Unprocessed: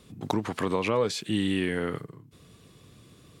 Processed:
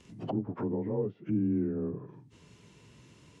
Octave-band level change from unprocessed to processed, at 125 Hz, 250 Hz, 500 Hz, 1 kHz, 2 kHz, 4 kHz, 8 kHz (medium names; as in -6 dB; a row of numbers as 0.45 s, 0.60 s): -1.5 dB, -1.5 dB, -6.0 dB, -12.5 dB, under -20 dB, under -20 dB, under -20 dB